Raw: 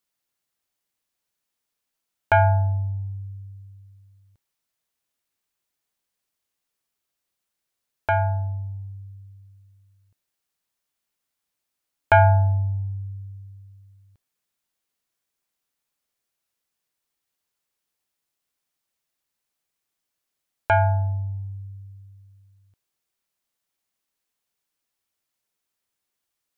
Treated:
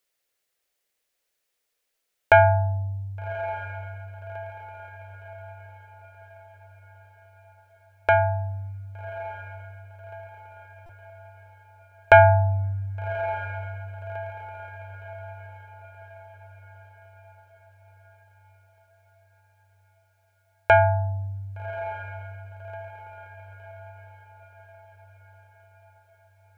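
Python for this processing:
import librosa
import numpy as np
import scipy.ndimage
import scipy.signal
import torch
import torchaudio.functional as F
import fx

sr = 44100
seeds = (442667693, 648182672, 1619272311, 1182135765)

y = fx.graphic_eq_10(x, sr, hz=(125, 250, 500, 1000, 2000), db=(-8, -7, 8, -5, 4))
y = fx.echo_diffused(y, sr, ms=1172, feedback_pct=49, wet_db=-13.5)
y = fx.buffer_glitch(y, sr, at_s=(10.86,), block=128, repeats=10)
y = y * librosa.db_to_amplitude(3.0)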